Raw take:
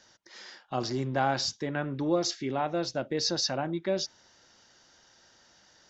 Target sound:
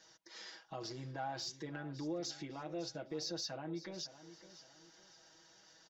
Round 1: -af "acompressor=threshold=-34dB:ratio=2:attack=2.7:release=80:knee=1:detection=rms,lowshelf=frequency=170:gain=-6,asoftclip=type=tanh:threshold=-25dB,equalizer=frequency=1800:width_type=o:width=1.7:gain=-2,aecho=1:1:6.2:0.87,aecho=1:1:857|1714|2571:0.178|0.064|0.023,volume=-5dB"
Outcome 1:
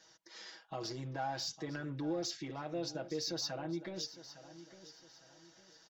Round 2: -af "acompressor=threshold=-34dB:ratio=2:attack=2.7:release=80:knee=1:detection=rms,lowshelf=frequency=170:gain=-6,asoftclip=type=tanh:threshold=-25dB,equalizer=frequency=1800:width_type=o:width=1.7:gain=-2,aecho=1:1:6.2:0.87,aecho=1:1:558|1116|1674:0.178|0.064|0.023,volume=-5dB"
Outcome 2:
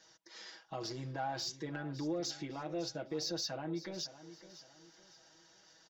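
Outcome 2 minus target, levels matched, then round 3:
downward compressor: peak gain reduction −4 dB
-af "acompressor=threshold=-41.5dB:ratio=2:attack=2.7:release=80:knee=1:detection=rms,lowshelf=frequency=170:gain=-6,asoftclip=type=tanh:threshold=-25dB,equalizer=frequency=1800:width_type=o:width=1.7:gain=-2,aecho=1:1:6.2:0.87,aecho=1:1:558|1116|1674:0.178|0.064|0.023,volume=-5dB"

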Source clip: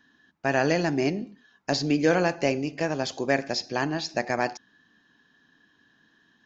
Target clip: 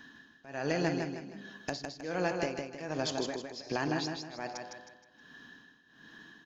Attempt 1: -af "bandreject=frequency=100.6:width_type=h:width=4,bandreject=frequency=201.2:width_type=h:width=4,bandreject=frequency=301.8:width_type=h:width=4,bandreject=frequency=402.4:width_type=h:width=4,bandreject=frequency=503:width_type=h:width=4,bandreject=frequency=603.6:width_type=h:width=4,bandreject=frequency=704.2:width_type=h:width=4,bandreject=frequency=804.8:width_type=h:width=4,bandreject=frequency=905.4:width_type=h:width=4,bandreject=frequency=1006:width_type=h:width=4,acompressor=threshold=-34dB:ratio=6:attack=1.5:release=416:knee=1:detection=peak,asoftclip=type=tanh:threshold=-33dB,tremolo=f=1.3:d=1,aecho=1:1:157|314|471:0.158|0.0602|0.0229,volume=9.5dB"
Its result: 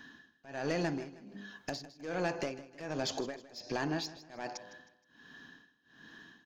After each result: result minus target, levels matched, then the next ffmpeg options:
soft clipping: distortion +17 dB; echo-to-direct −11 dB
-af "bandreject=frequency=100.6:width_type=h:width=4,bandreject=frequency=201.2:width_type=h:width=4,bandreject=frequency=301.8:width_type=h:width=4,bandreject=frequency=402.4:width_type=h:width=4,bandreject=frequency=503:width_type=h:width=4,bandreject=frequency=603.6:width_type=h:width=4,bandreject=frequency=704.2:width_type=h:width=4,bandreject=frequency=804.8:width_type=h:width=4,bandreject=frequency=905.4:width_type=h:width=4,bandreject=frequency=1006:width_type=h:width=4,acompressor=threshold=-34dB:ratio=6:attack=1.5:release=416:knee=1:detection=peak,asoftclip=type=tanh:threshold=-22dB,tremolo=f=1.3:d=1,aecho=1:1:157|314|471:0.158|0.0602|0.0229,volume=9.5dB"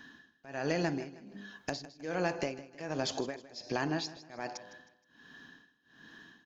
echo-to-direct −11 dB
-af "bandreject=frequency=100.6:width_type=h:width=4,bandreject=frequency=201.2:width_type=h:width=4,bandreject=frequency=301.8:width_type=h:width=4,bandreject=frequency=402.4:width_type=h:width=4,bandreject=frequency=503:width_type=h:width=4,bandreject=frequency=603.6:width_type=h:width=4,bandreject=frequency=704.2:width_type=h:width=4,bandreject=frequency=804.8:width_type=h:width=4,bandreject=frequency=905.4:width_type=h:width=4,bandreject=frequency=1006:width_type=h:width=4,acompressor=threshold=-34dB:ratio=6:attack=1.5:release=416:knee=1:detection=peak,asoftclip=type=tanh:threshold=-22dB,tremolo=f=1.3:d=1,aecho=1:1:157|314|471|628|785:0.562|0.214|0.0812|0.0309|0.0117,volume=9.5dB"

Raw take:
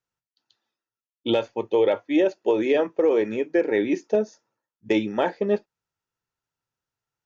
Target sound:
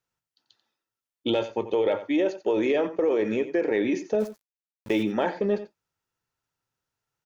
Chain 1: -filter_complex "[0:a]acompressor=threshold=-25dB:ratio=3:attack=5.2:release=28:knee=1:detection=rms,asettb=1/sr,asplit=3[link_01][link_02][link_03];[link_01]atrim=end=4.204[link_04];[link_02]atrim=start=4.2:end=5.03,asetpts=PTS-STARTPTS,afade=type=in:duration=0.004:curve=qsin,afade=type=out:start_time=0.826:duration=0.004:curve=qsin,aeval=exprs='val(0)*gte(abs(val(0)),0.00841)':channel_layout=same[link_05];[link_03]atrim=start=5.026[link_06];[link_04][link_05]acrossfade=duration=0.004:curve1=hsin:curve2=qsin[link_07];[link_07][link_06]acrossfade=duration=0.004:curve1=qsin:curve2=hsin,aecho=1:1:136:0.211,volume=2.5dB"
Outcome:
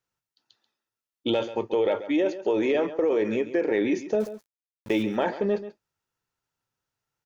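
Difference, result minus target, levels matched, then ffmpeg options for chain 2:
echo 47 ms late
-filter_complex "[0:a]acompressor=threshold=-25dB:ratio=3:attack=5.2:release=28:knee=1:detection=rms,asettb=1/sr,asplit=3[link_01][link_02][link_03];[link_01]atrim=end=4.204[link_04];[link_02]atrim=start=4.2:end=5.03,asetpts=PTS-STARTPTS,afade=type=in:duration=0.004:curve=qsin,afade=type=out:start_time=0.826:duration=0.004:curve=qsin,aeval=exprs='val(0)*gte(abs(val(0)),0.00841)':channel_layout=same[link_05];[link_03]atrim=start=5.026[link_06];[link_04][link_05]acrossfade=duration=0.004:curve1=hsin:curve2=qsin[link_07];[link_07][link_06]acrossfade=duration=0.004:curve1=qsin:curve2=hsin,aecho=1:1:89:0.211,volume=2.5dB"

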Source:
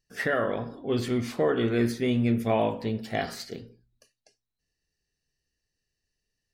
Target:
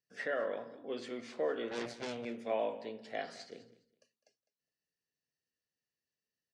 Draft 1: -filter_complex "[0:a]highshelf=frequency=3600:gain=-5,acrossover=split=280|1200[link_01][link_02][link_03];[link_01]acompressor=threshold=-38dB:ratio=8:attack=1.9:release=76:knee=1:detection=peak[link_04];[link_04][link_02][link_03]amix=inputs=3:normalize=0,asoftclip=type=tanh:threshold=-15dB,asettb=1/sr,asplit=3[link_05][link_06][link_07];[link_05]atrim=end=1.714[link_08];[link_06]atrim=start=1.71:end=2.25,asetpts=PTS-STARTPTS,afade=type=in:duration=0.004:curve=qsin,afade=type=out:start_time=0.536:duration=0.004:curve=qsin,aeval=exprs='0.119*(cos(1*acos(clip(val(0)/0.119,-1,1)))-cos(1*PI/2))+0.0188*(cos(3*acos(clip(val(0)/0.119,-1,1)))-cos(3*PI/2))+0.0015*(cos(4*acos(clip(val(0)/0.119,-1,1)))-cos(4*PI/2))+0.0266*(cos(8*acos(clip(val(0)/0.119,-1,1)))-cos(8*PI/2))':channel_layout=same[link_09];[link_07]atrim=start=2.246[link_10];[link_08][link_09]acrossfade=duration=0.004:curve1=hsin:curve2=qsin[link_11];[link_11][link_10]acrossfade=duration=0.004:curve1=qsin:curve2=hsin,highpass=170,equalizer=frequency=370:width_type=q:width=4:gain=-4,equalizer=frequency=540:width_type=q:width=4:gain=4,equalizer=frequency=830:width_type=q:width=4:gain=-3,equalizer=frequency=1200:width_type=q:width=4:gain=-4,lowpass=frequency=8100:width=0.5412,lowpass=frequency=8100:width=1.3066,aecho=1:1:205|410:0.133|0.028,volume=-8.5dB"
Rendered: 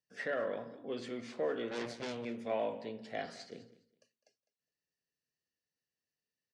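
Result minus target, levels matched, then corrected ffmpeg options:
soft clipping: distortion +21 dB; downward compressor: peak gain reduction −9.5 dB
-filter_complex "[0:a]highshelf=frequency=3600:gain=-5,acrossover=split=280|1200[link_01][link_02][link_03];[link_01]acompressor=threshold=-49dB:ratio=8:attack=1.9:release=76:knee=1:detection=peak[link_04];[link_04][link_02][link_03]amix=inputs=3:normalize=0,asoftclip=type=tanh:threshold=-4dB,asettb=1/sr,asplit=3[link_05][link_06][link_07];[link_05]atrim=end=1.714[link_08];[link_06]atrim=start=1.71:end=2.25,asetpts=PTS-STARTPTS,afade=type=in:duration=0.004:curve=qsin,afade=type=out:start_time=0.536:duration=0.004:curve=qsin,aeval=exprs='0.119*(cos(1*acos(clip(val(0)/0.119,-1,1)))-cos(1*PI/2))+0.0188*(cos(3*acos(clip(val(0)/0.119,-1,1)))-cos(3*PI/2))+0.0015*(cos(4*acos(clip(val(0)/0.119,-1,1)))-cos(4*PI/2))+0.0266*(cos(8*acos(clip(val(0)/0.119,-1,1)))-cos(8*PI/2))':channel_layout=same[link_09];[link_07]atrim=start=2.246[link_10];[link_08][link_09]acrossfade=duration=0.004:curve1=hsin:curve2=qsin[link_11];[link_11][link_10]acrossfade=duration=0.004:curve1=qsin:curve2=hsin,highpass=170,equalizer=frequency=370:width_type=q:width=4:gain=-4,equalizer=frequency=540:width_type=q:width=4:gain=4,equalizer=frequency=830:width_type=q:width=4:gain=-3,equalizer=frequency=1200:width_type=q:width=4:gain=-4,lowpass=frequency=8100:width=0.5412,lowpass=frequency=8100:width=1.3066,aecho=1:1:205|410:0.133|0.028,volume=-8.5dB"

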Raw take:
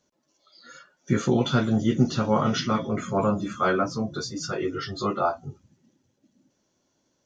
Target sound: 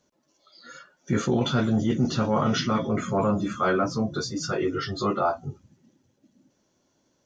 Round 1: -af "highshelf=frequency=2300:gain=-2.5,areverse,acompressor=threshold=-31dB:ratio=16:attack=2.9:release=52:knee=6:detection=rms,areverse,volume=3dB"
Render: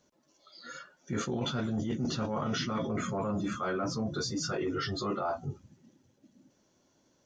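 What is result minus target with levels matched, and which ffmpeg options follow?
downward compressor: peak gain reduction +11 dB
-af "highshelf=frequency=2300:gain=-2.5,areverse,acompressor=threshold=-19.5dB:ratio=16:attack=2.9:release=52:knee=6:detection=rms,areverse,volume=3dB"

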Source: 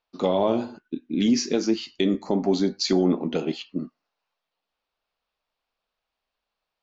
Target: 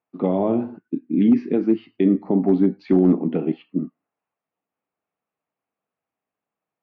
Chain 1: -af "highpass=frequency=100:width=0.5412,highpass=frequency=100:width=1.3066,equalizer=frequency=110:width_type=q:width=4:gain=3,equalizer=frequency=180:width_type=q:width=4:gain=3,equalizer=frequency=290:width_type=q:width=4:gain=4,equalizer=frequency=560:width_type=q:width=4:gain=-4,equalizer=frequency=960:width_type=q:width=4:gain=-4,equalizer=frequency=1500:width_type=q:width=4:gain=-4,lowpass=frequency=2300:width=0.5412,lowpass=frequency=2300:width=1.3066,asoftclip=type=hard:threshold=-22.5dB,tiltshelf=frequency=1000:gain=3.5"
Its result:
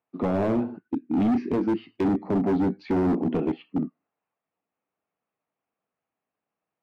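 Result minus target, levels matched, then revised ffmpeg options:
hard clipping: distortion +23 dB
-af "highpass=frequency=100:width=0.5412,highpass=frequency=100:width=1.3066,equalizer=frequency=110:width_type=q:width=4:gain=3,equalizer=frequency=180:width_type=q:width=4:gain=3,equalizer=frequency=290:width_type=q:width=4:gain=4,equalizer=frequency=560:width_type=q:width=4:gain=-4,equalizer=frequency=960:width_type=q:width=4:gain=-4,equalizer=frequency=1500:width_type=q:width=4:gain=-4,lowpass=frequency=2300:width=0.5412,lowpass=frequency=2300:width=1.3066,asoftclip=type=hard:threshold=-11dB,tiltshelf=frequency=1000:gain=3.5"

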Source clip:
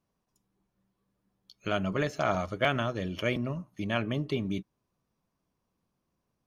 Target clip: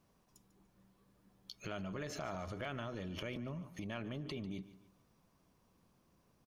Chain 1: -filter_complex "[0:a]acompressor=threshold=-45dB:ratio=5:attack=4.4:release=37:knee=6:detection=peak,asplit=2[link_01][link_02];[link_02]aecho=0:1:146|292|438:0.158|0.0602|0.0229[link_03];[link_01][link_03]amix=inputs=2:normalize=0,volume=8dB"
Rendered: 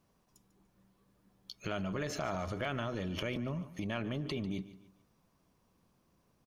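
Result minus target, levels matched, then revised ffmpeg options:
downward compressor: peak gain reduction −6 dB
-filter_complex "[0:a]acompressor=threshold=-52.5dB:ratio=5:attack=4.4:release=37:knee=6:detection=peak,asplit=2[link_01][link_02];[link_02]aecho=0:1:146|292|438:0.158|0.0602|0.0229[link_03];[link_01][link_03]amix=inputs=2:normalize=0,volume=8dB"

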